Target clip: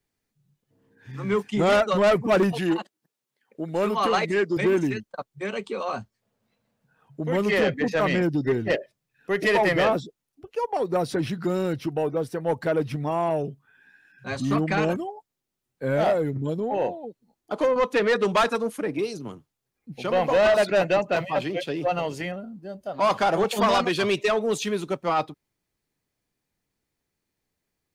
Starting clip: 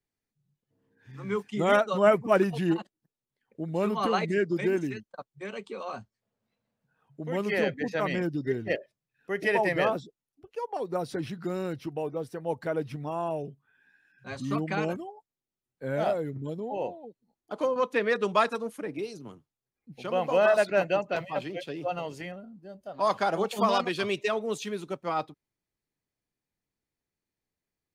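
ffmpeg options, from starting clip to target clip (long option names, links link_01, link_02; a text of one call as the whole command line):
ffmpeg -i in.wav -filter_complex "[0:a]asettb=1/sr,asplit=3[link_01][link_02][link_03];[link_01]atrim=end=2.524[link_04];[link_02]atrim=start=2.52:end=4.57,asetpts=PTS-STARTPTS,afade=type=in:duration=0.004:curve=qsin,afade=type=out:start_time=2.046:duration=0.004:curve=qsin,highpass=frequency=390:poles=1[link_05];[link_03]atrim=start=4.566[link_06];[link_04][link_05]acrossfade=duration=0.004:curve1=hsin:curve2=qsin[link_07];[link_07][link_06]acrossfade=duration=0.004:curve1=qsin:curve2=hsin,asoftclip=type=tanh:threshold=-23dB,volume=8dB" out.wav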